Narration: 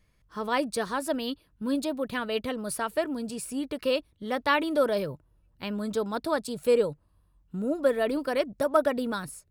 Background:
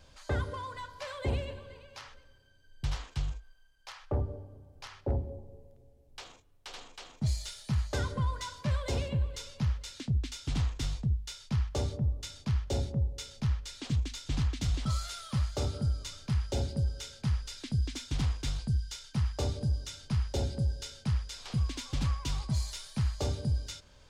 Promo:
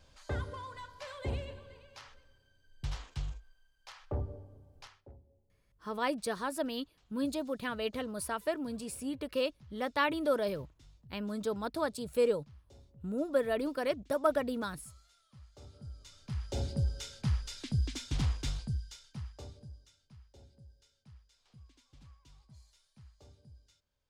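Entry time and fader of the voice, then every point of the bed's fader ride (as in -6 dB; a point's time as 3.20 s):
5.50 s, -5.5 dB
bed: 4.82 s -4.5 dB
5.15 s -26.5 dB
15.34 s -26.5 dB
16.72 s -1 dB
18.42 s -1 dB
20.18 s -26.5 dB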